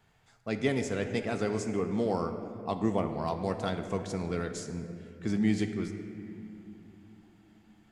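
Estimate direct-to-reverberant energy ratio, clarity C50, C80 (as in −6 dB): 6.0 dB, 8.0 dB, 8.5 dB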